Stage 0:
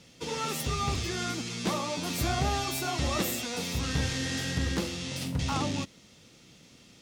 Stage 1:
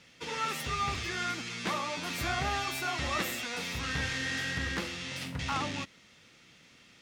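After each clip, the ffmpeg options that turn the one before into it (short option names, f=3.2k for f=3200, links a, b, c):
-af "equalizer=f=1.8k:w=0.68:g=12,volume=-7.5dB"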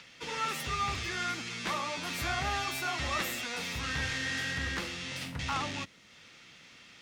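-filter_complex "[0:a]acrossover=split=110|670|6700[a][b][c][d];[b]asoftclip=type=tanh:threshold=-38dB[e];[c]acompressor=mode=upward:threshold=-48dB:ratio=2.5[f];[a][e][f][d]amix=inputs=4:normalize=0"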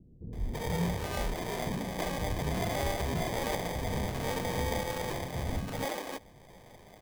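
-filter_complex "[0:a]acrusher=samples=32:mix=1:aa=0.000001,acrossover=split=290[a][b];[b]adelay=330[c];[a][c]amix=inputs=2:normalize=0,volume=2.5dB"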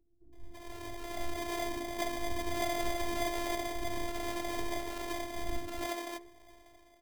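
-af "dynaudnorm=f=430:g=5:m=13.5dB,afftfilt=real='hypot(re,im)*cos(PI*b)':imag='0':win_size=512:overlap=0.75,bandreject=f=69.62:t=h:w=4,bandreject=f=139.24:t=h:w=4,bandreject=f=208.86:t=h:w=4,bandreject=f=278.48:t=h:w=4,bandreject=f=348.1:t=h:w=4,bandreject=f=417.72:t=h:w=4,bandreject=f=487.34:t=h:w=4,bandreject=f=556.96:t=h:w=4,bandreject=f=626.58:t=h:w=4,bandreject=f=696.2:t=h:w=4,bandreject=f=765.82:t=h:w=4,bandreject=f=835.44:t=h:w=4,bandreject=f=905.06:t=h:w=4,bandreject=f=974.68:t=h:w=4,bandreject=f=1.0443k:t=h:w=4,bandreject=f=1.11392k:t=h:w=4,bandreject=f=1.18354k:t=h:w=4,bandreject=f=1.25316k:t=h:w=4,bandreject=f=1.32278k:t=h:w=4,bandreject=f=1.3924k:t=h:w=4,bandreject=f=1.46202k:t=h:w=4,bandreject=f=1.53164k:t=h:w=4,bandreject=f=1.60126k:t=h:w=4,bandreject=f=1.67088k:t=h:w=4,bandreject=f=1.7405k:t=h:w=4,bandreject=f=1.81012k:t=h:w=4,bandreject=f=1.87974k:t=h:w=4,bandreject=f=1.94936k:t=h:w=4,bandreject=f=2.01898k:t=h:w=4,bandreject=f=2.0886k:t=h:w=4,bandreject=f=2.15822k:t=h:w=4,bandreject=f=2.22784k:t=h:w=4,bandreject=f=2.29746k:t=h:w=4,bandreject=f=2.36708k:t=h:w=4,volume=-9dB"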